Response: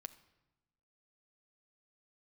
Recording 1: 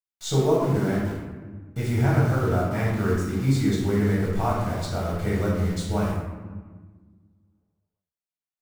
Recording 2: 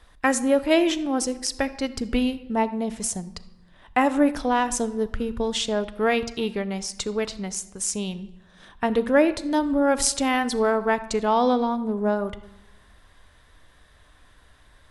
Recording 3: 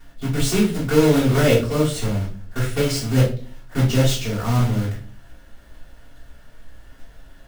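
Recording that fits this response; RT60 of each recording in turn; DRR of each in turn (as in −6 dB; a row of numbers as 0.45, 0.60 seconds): 2; 1.5, 1.1, 0.40 seconds; −5.5, 12.5, −10.0 decibels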